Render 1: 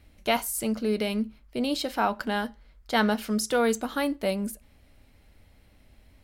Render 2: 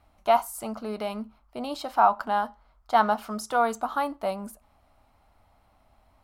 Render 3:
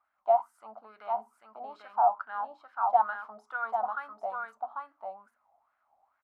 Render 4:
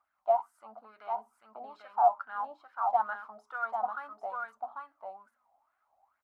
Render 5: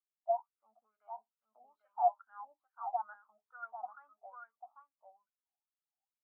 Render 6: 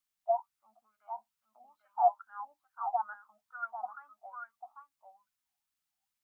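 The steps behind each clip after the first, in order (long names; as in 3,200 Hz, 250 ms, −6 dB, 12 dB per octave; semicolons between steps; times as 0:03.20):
flat-topped bell 930 Hz +15 dB 1.3 octaves; level −7.5 dB
mains-hum notches 60/120/180/240/300/360/420 Hz; single-tap delay 794 ms −3.5 dB; LFO wah 2.3 Hz 720–1,600 Hz, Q 6
phase shifter 0.64 Hz, delay 4.3 ms, feedback 37%; level −2.5 dB
every bin expanded away from the loudest bin 1.5 to 1; level −5.5 dB
parametric band 460 Hz −14.5 dB 0.91 octaves; level +8.5 dB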